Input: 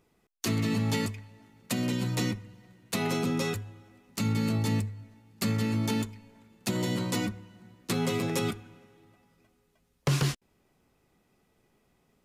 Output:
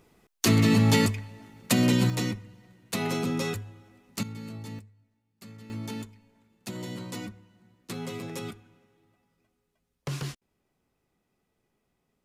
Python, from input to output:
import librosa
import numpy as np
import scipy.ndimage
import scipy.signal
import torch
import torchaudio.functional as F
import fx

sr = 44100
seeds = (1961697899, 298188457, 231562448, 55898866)

y = fx.gain(x, sr, db=fx.steps((0.0, 7.5), (2.1, 0.0), (4.23, -12.0), (4.79, -19.0), (5.7, -7.5)))